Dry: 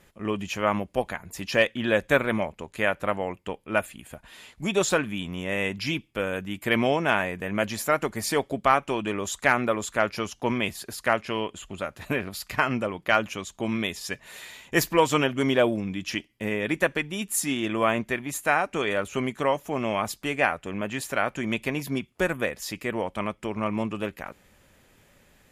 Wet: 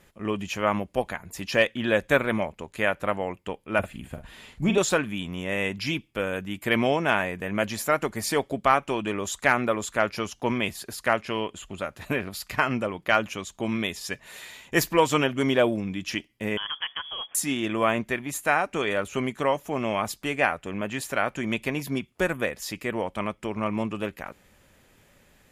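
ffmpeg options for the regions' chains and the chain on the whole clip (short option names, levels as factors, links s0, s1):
-filter_complex "[0:a]asettb=1/sr,asplit=3[s0][s1][s2];[s0]atrim=end=3.794[s3];[s1]atrim=start=3.79:end=4.78,asetpts=PTS-STARTPTS,afade=t=in:d=0.004:c=qsin,afade=t=out:st=0.986:d=0.004:c=qsin,lowshelf=f=270:g=9.5,acrossover=split=4000[s4][s5];[s5]acompressor=threshold=0.002:ratio=4:attack=1:release=60[s6];[s4][s6]amix=inputs=2:normalize=0,asplit=2[s7][s8];[s8]adelay=45,volume=0.398[s9];[s7][s9]amix=inputs=2:normalize=0,atrim=end_sample=43659[s10];[s2]atrim=start=4.776[s11];[s3][s10]acrossfade=d=0.004:c1=hsin:c2=qsin[s12];[s12][s11]acrossfade=d=0.004:c1=qsin:c2=hsin,asettb=1/sr,asplit=3[s13][s14][s15];[s13]atrim=end=16.574[s16];[s14]atrim=start=16.57:end=17.35,asetpts=PTS-STARTPTS,afade=t=in:d=0.004:c=qsin,afade=t=out:st=0.776:d=0.004:c=qsin,acompressor=threshold=0.0316:ratio=2.5:attack=3.2:release=140:knee=1:detection=peak,acrusher=bits=4:mode=log:mix=0:aa=0.000001,lowpass=f=3000:t=q:w=0.5098,lowpass=f=3000:t=q:w=0.6013,lowpass=f=3000:t=q:w=0.9,lowpass=f=3000:t=q:w=2.563,afreqshift=-3500[s17];[s15]atrim=start=17.346[s18];[s16][s17]acrossfade=d=0.004:c1=hsin:c2=qsin[s19];[s19][s18]acrossfade=d=0.004:c1=qsin:c2=hsin"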